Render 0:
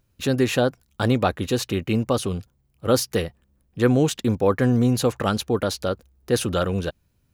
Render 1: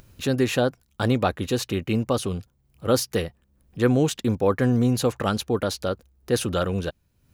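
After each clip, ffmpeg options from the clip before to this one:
ffmpeg -i in.wav -af "acompressor=mode=upward:threshold=-37dB:ratio=2.5,volume=-1.5dB" out.wav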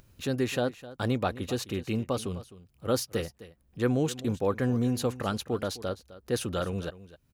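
ffmpeg -i in.wav -af "aecho=1:1:258:0.15,volume=-6.5dB" out.wav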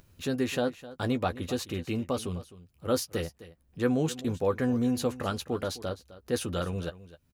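ffmpeg -i in.wav -filter_complex "[0:a]asplit=2[link_01][link_02];[link_02]adelay=12,volume=-8.5dB[link_03];[link_01][link_03]amix=inputs=2:normalize=0,volume=-1dB" out.wav

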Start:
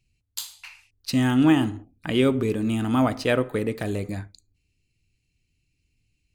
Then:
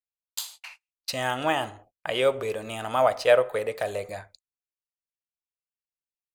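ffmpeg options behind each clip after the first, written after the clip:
ffmpeg -i in.wav -af "agate=range=-33dB:threshold=-45dB:ratio=16:detection=peak,lowshelf=frequency=400:width_type=q:width=3:gain=-12.5" out.wav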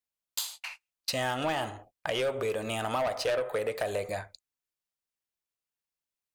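ffmpeg -i in.wav -af "asoftclip=type=tanh:threshold=-21dB,acompressor=threshold=-30dB:ratio=6,volume=3dB" out.wav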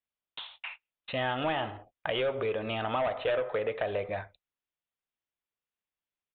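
ffmpeg -i in.wav -af "aresample=8000,aresample=44100" out.wav

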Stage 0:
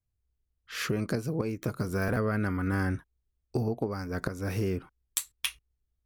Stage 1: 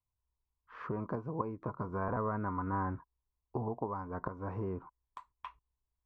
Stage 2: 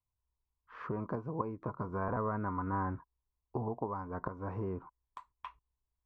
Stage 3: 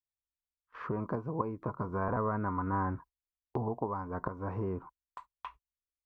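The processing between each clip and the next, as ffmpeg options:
ffmpeg -i in.wav -af "lowpass=frequency=1000:width_type=q:width=9.7,volume=-8.5dB" out.wav
ffmpeg -i in.wav -af anull out.wav
ffmpeg -i in.wav -af "agate=range=-22dB:threshold=-53dB:ratio=16:detection=peak,volume=2.5dB" out.wav

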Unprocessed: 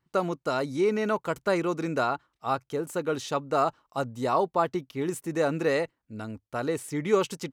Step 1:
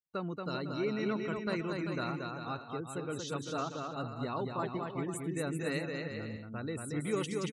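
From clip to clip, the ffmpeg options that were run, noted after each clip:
ffmpeg -i in.wav -af "afftdn=noise_reduction=31:noise_floor=-42,equalizer=frequency=730:width=0.52:gain=-14,aecho=1:1:230|391|503.7|582.6|637.8:0.631|0.398|0.251|0.158|0.1,volume=-1.5dB" out.wav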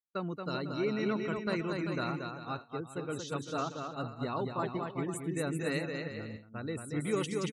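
ffmpeg -i in.wav -af "agate=range=-33dB:threshold=-36dB:ratio=3:detection=peak,volume=1.5dB" out.wav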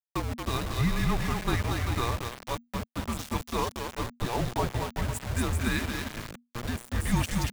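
ffmpeg -i in.wav -af "aeval=exprs='val(0)*gte(abs(val(0)),0.015)':channel_layout=same,afreqshift=-240,volume=6dB" out.wav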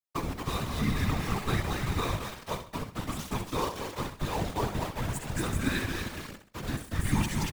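ffmpeg -i in.wav -filter_complex "[0:a]asplit=2[link_01][link_02];[link_02]aecho=0:1:65|130|195|260:0.376|0.135|0.0487|0.0175[link_03];[link_01][link_03]amix=inputs=2:normalize=0,afftfilt=real='hypot(re,im)*cos(2*PI*random(0))':imag='hypot(re,im)*sin(2*PI*random(1))':win_size=512:overlap=0.75,volume=4dB" out.wav

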